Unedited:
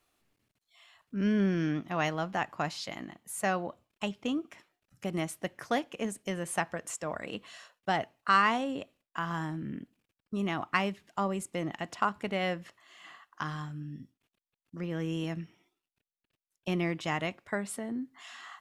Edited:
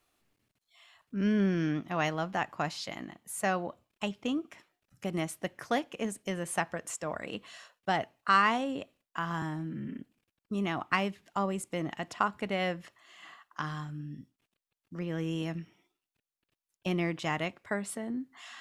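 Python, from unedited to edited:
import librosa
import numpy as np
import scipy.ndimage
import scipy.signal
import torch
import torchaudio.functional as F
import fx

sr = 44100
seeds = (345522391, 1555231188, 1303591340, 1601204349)

y = fx.edit(x, sr, fx.stretch_span(start_s=9.42, length_s=0.37, factor=1.5), tone=tone)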